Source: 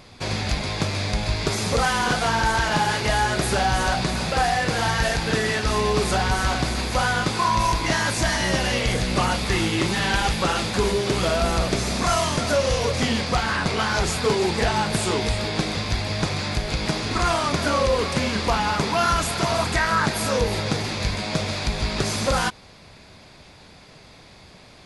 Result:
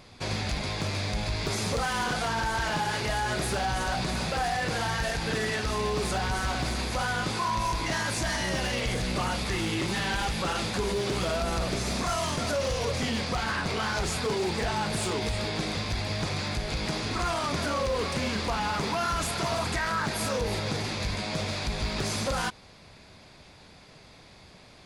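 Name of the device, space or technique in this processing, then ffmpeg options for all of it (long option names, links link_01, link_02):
limiter into clipper: -af "alimiter=limit=-15dB:level=0:latency=1:release=34,asoftclip=type=hard:threshold=-18dB,volume=-4.5dB"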